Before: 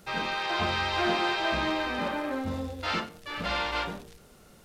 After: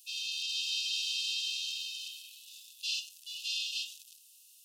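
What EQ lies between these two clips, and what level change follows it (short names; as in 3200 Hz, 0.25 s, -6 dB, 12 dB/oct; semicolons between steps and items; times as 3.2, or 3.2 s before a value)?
brick-wall FIR high-pass 2500 Hz; dynamic EQ 6300 Hz, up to +7 dB, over -54 dBFS, Q 1.2; tilt +4 dB/oct; -8.0 dB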